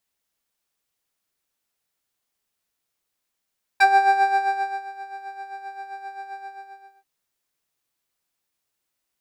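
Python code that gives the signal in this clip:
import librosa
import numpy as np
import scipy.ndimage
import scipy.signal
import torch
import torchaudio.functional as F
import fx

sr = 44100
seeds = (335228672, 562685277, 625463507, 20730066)

y = fx.sub_patch_tremolo(sr, seeds[0], note=79, wave='square', wave2='square', interval_st=12, detune_cents=16, level2_db=-4.5, sub_db=-15.5, noise_db=-23.5, kind='bandpass', cutoff_hz=490.0, q=0.92, env_oct=2.5, env_decay_s=0.05, env_sustain_pct=15, attack_ms=9.7, decay_s=1.06, sustain_db=-21.0, release_s=0.67, note_s=2.57, lfo_hz=7.6, tremolo_db=8.5)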